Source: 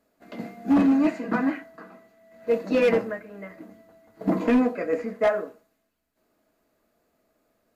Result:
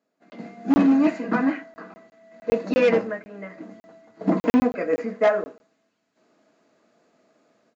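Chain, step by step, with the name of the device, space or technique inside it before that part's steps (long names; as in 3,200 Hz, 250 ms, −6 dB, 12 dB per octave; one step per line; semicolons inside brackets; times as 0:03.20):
call with lost packets (high-pass filter 130 Hz 24 dB per octave; downsampling to 16,000 Hz; automatic gain control gain up to 14.5 dB; dropped packets of 20 ms random)
level −7 dB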